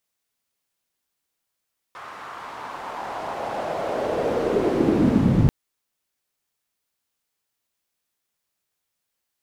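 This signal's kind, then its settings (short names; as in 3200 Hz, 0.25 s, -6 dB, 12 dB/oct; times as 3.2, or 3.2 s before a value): swept filtered noise pink, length 3.54 s bandpass, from 1200 Hz, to 120 Hz, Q 2.5, linear, gain ramp +24 dB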